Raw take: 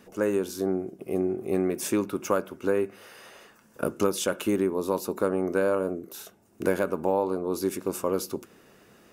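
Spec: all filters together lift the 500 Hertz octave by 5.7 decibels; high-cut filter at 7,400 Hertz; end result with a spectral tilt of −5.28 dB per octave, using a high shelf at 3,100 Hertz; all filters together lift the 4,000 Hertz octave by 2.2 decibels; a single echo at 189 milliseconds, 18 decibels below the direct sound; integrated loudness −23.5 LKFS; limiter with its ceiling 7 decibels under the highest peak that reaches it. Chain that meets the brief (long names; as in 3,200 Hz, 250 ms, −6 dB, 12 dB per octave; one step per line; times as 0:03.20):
low-pass filter 7,400 Hz
parametric band 500 Hz +7 dB
high-shelf EQ 3,100 Hz −7.5 dB
parametric band 4,000 Hz +9 dB
brickwall limiter −13.5 dBFS
single-tap delay 189 ms −18 dB
level +2 dB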